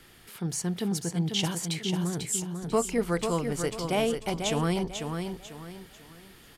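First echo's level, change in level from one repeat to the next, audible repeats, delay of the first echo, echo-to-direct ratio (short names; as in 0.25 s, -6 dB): -6.0 dB, -9.5 dB, 4, 0.494 s, -5.5 dB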